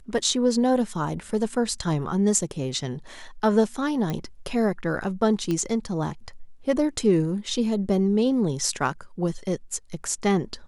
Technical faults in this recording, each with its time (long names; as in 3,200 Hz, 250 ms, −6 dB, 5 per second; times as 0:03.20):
0:04.10: click −16 dBFS
0:05.51: click −15 dBFS